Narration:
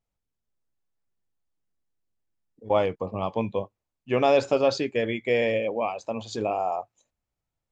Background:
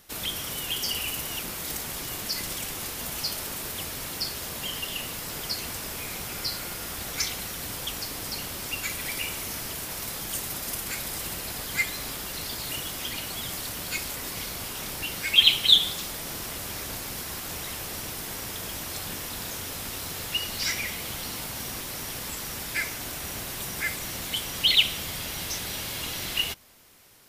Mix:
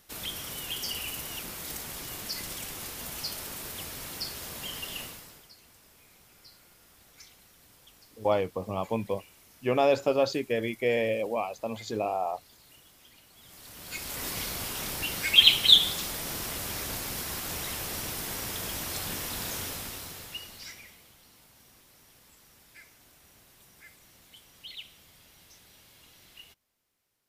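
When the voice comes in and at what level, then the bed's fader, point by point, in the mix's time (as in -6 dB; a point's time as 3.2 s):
5.55 s, -3.0 dB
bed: 5.02 s -5 dB
5.51 s -23.5 dB
13.31 s -23.5 dB
14.23 s 0 dB
19.63 s 0 dB
21.15 s -23.5 dB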